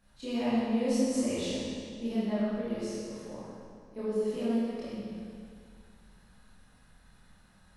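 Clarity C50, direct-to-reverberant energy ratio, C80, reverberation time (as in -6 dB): -4.5 dB, -11.0 dB, -2.0 dB, 2.2 s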